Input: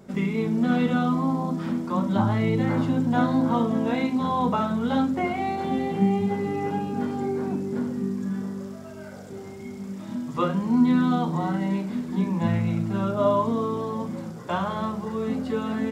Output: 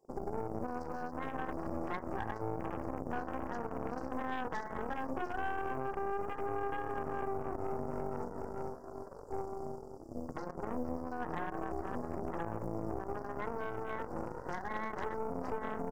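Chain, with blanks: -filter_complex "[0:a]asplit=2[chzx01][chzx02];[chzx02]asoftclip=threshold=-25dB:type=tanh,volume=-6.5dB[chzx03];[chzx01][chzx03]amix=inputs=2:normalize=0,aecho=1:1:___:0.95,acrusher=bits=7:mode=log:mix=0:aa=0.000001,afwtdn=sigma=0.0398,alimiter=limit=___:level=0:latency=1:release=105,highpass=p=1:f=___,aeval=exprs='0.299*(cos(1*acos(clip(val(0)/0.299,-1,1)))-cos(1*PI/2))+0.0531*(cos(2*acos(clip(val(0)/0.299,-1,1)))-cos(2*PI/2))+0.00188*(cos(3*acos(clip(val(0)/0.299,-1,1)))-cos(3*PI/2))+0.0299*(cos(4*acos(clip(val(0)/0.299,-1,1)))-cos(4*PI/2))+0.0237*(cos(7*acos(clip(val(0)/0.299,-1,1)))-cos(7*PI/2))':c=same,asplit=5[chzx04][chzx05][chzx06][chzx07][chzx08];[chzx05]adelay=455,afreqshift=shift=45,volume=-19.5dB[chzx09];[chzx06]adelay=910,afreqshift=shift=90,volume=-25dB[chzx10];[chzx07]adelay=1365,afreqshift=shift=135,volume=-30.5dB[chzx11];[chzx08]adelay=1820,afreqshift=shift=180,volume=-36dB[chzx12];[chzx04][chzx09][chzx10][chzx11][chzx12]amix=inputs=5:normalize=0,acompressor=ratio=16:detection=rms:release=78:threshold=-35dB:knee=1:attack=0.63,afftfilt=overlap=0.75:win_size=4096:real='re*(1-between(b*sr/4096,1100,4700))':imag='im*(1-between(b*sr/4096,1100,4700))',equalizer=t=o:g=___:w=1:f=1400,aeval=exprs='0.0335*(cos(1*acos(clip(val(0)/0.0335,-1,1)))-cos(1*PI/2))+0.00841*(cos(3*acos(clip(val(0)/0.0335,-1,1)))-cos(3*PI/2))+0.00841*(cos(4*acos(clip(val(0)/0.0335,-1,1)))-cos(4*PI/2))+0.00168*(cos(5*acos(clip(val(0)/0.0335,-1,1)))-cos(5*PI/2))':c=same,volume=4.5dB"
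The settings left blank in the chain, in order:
2.5, -11dB, 420, 7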